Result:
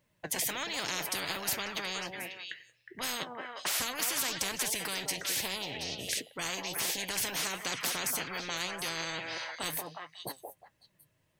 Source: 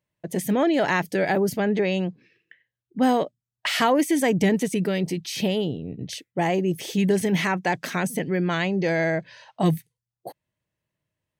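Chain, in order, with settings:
flanger 1.3 Hz, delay 3.4 ms, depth 4.5 ms, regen +62%
on a send: echo through a band-pass that steps 181 ms, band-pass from 610 Hz, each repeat 1.4 octaves, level −8 dB
on the sum: every bin compressed towards the loudest bin 10 to 1
level −3 dB

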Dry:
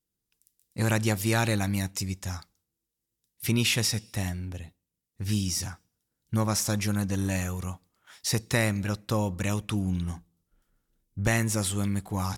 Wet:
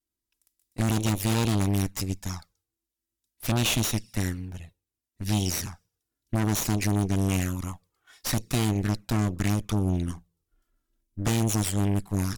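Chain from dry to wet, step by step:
flanger swept by the level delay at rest 3.1 ms, full sweep at −23 dBFS
harmonic generator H 8 −12 dB, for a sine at −13.5 dBFS

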